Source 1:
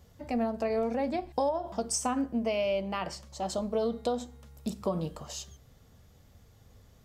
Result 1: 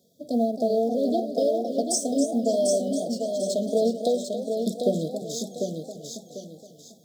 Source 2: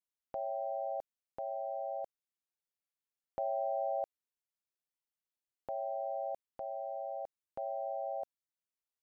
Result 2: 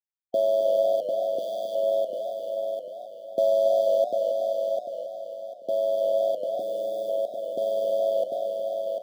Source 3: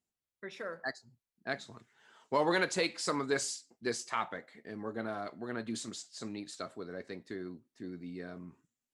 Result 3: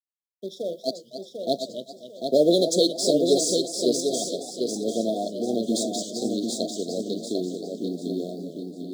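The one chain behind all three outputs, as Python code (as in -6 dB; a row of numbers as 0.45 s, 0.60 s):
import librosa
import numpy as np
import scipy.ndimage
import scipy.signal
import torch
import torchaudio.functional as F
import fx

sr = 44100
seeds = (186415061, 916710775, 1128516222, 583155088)

p1 = fx.law_mismatch(x, sr, coded='A')
p2 = scipy.signal.sosfilt(scipy.signal.butter(4, 180.0, 'highpass', fs=sr, output='sos'), p1)
p3 = fx.rider(p2, sr, range_db=5, speed_s=2.0)
p4 = p2 + F.gain(torch.from_numpy(p3), 2.5).numpy()
p5 = fx.brickwall_bandstop(p4, sr, low_hz=730.0, high_hz=3200.0)
p6 = p5 + fx.echo_feedback(p5, sr, ms=746, feedback_pct=30, wet_db=-5.0, dry=0)
p7 = fx.echo_warbled(p6, sr, ms=271, feedback_pct=38, rate_hz=2.8, cents=148, wet_db=-10.5)
y = p7 * 10.0 ** (-26 / 20.0) / np.sqrt(np.mean(np.square(p7)))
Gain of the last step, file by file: 0.0 dB, +10.5 dB, +6.5 dB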